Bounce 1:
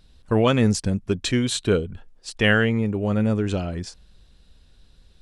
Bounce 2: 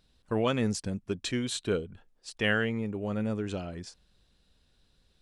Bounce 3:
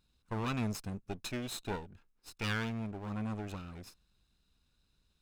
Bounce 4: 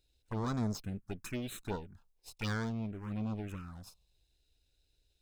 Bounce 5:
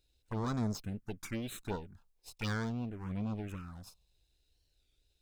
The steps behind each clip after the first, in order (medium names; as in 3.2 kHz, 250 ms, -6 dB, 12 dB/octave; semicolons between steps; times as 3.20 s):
bass shelf 96 Hz -9 dB; trim -8 dB
comb filter that takes the minimum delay 0.76 ms; trim -6 dB
touch-sensitive phaser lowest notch 190 Hz, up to 2.7 kHz, full sweep at -31.5 dBFS; trim +1 dB
warped record 33 1/3 rpm, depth 160 cents